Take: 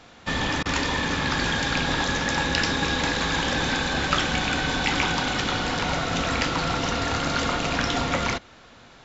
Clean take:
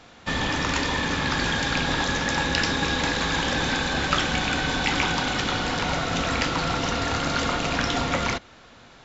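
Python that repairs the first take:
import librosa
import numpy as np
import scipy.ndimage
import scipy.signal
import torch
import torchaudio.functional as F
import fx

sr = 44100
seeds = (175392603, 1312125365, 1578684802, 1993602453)

y = fx.fix_interpolate(x, sr, at_s=(0.63,), length_ms=24.0)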